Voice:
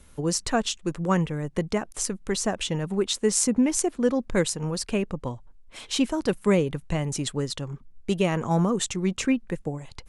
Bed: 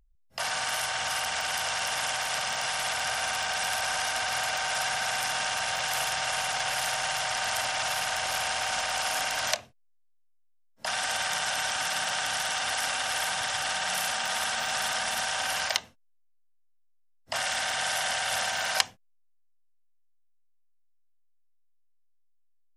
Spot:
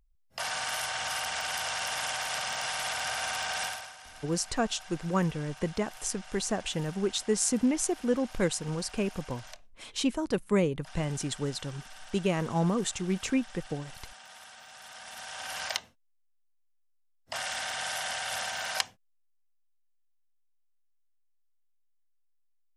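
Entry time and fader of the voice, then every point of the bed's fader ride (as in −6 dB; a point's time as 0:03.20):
4.05 s, −4.5 dB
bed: 0:03.64 −3 dB
0:03.96 −20.5 dB
0:14.77 −20.5 dB
0:15.70 −5 dB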